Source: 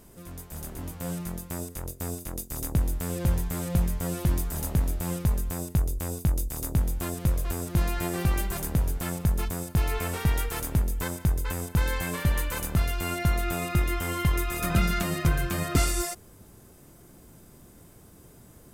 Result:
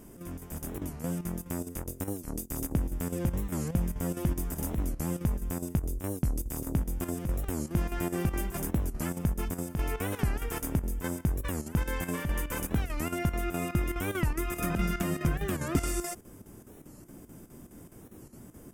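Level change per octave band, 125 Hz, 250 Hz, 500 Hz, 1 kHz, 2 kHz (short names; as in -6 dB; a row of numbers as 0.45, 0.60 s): -4.5, -0.5, -1.5, -4.5, -5.0 dB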